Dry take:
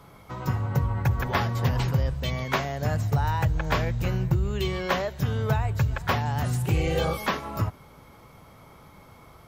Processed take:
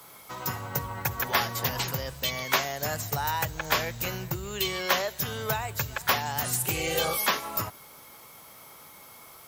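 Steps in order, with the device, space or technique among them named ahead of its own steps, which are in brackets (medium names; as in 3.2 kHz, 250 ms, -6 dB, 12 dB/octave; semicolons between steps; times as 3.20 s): turntable without a phono preamp (RIAA curve recording; white noise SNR 29 dB)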